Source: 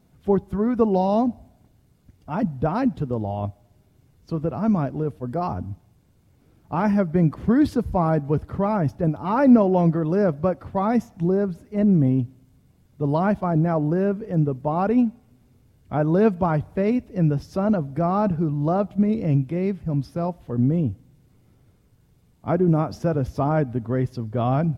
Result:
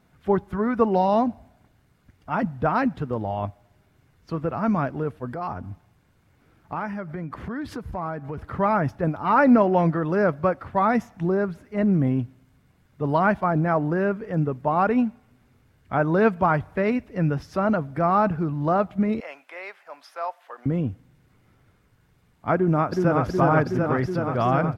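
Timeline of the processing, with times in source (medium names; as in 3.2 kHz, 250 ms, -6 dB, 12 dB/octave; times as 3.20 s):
5.33–8.38 s: compression, threshold -27 dBFS
19.20–20.66 s: high-pass 650 Hz 24 dB/octave
22.55–23.25 s: echo throw 370 ms, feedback 80%, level -1.5 dB
whole clip: peaking EQ 1.6 kHz +12 dB 2 oct; trim -3.5 dB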